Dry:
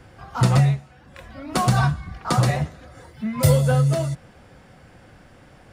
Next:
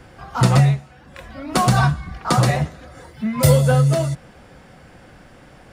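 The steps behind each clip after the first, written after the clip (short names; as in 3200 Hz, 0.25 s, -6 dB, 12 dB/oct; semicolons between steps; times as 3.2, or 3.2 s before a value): bell 100 Hz -5.5 dB 0.48 oct; gain +4 dB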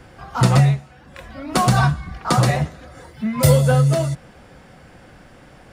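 nothing audible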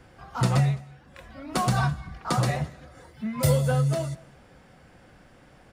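echo 0.211 s -24 dB; gain -8 dB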